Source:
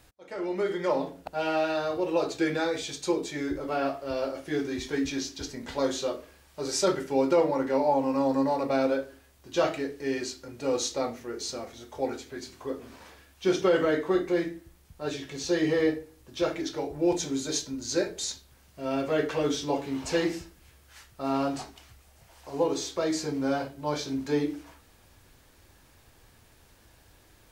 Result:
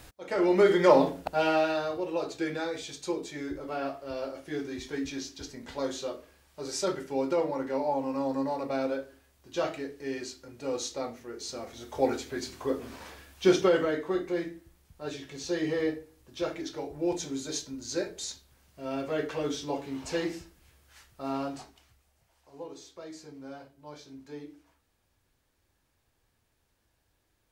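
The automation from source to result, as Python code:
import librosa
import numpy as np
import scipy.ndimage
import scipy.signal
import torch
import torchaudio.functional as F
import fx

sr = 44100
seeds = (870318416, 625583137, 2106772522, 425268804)

y = fx.gain(x, sr, db=fx.line((1.09, 7.5), (2.09, -5.0), (11.41, -5.0), (11.98, 4.0), (13.45, 4.0), (13.93, -4.5), (21.3, -4.5), (22.49, -16.0)))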